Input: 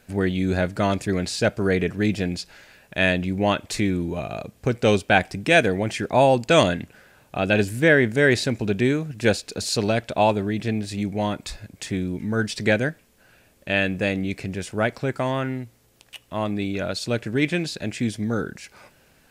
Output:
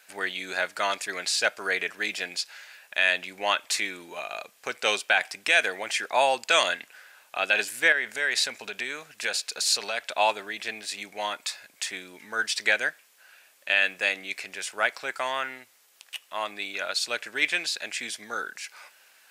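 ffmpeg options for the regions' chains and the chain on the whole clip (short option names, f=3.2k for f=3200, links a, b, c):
-filter_complex "[0:a]asettb=1/sr,asplit=3[a][b][c];[a]atrim=end=7.924[d];[b]atrim=start=7.92:end=10.06,asetpts=PTS-STARTPTS,afade=t=in:d=0.004:c=qsin,afade=t=out:st=2.136:d=0.004:c=qsin,bandreject=f=330:w=6.1,acompressor=threshold=-20dB:ratio=6:attack=3.2:release=140:knee=1:detection=peak[e];[c]atrim=start=10.056[f];[d][e]acrossfade=d=0.004:c1=hsin:c2=qsin[g];[g][f]acrossfade=d=0.004:c1=qsin:c2=hsin,highpass=1.1k,alimiter=level_in=10.5dB:limit=-1dB:release=50:level=0:latency=1,volume=-7dB"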